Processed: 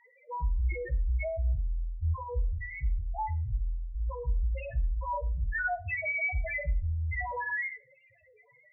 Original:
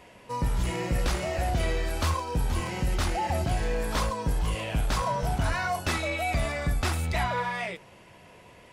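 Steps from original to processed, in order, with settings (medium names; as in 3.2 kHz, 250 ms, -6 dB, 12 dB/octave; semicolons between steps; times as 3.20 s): graphic EQ 250/500/1000/2000/8000 Hz -7/+4/-4/+10/+6 dB; loudest bins only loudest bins 1; on a send: reverberation, pre-delay 3 ms, DRR 11 dB; on the sum: trim +3 dB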